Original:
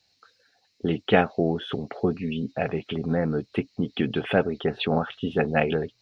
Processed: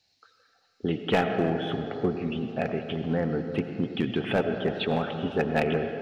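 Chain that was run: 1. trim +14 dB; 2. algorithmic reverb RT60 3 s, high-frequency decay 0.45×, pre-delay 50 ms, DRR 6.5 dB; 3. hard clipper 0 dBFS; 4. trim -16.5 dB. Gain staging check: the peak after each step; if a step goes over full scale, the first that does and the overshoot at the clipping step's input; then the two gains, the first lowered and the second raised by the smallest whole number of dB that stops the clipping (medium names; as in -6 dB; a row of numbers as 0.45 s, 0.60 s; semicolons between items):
+9.5 dBFS, +9.5 dBFS, 0.0 dBFS, -16.5 dBFS; step 1, 9.5 dB; step 1 +4 dB, step 4 -6.5 dB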